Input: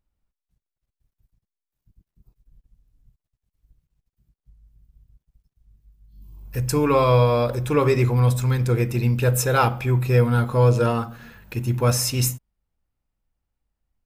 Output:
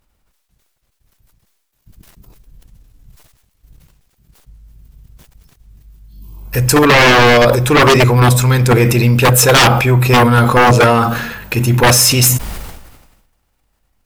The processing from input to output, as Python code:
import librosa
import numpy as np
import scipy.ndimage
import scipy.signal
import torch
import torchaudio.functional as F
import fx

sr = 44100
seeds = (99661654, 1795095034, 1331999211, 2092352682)

p1 = fx.low_shelf(x, sr, hz=300.0, db=-7.5)
p2 = fx.level_steps(p1, sr, step_db=22)
p3 = p1 + (p2 * librosa.db_to_amplitude(3.0))
p4 = fx.fold_sine(p3, sr, drive_db=13, ceiling_db=-2.0)
p5 = fx.sustainer(p4, sr, db_per_s=48.0)
y = p5 * librosa.db_to_amplitude(-2.5)